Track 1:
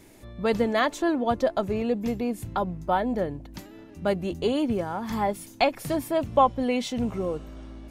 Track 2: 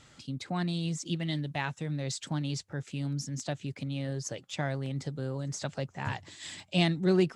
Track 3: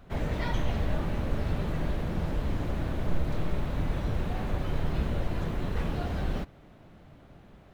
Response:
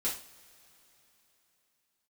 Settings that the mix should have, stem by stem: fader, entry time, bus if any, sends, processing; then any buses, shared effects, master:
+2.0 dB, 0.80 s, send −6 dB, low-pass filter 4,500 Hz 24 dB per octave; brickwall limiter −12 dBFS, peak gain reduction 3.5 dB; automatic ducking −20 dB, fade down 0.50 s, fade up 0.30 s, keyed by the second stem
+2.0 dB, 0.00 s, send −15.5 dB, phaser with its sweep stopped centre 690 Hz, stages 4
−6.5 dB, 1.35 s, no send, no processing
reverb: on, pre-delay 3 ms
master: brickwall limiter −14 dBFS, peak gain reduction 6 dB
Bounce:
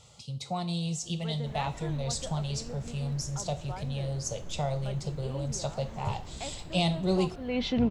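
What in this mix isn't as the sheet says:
stem 1: send off
stem 2: send −15.5 dB → −9.5 dB
stem 3 −6.5 dB → −15.0 dB

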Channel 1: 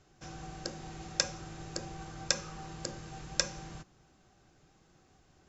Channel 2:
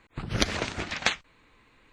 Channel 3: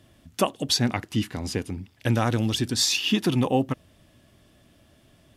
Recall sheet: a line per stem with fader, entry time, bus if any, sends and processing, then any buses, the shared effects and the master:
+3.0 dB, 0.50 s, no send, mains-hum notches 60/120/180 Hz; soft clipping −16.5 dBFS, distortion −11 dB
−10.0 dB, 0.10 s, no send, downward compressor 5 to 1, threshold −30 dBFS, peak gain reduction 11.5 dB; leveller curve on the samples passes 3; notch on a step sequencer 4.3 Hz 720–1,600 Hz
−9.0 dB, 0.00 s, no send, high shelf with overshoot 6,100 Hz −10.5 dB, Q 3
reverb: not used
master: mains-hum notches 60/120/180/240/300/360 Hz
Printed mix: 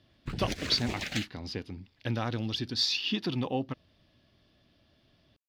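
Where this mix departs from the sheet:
stem 1: muted
master: missing mains-hum notches 60/120/180/240/300/360 Hz

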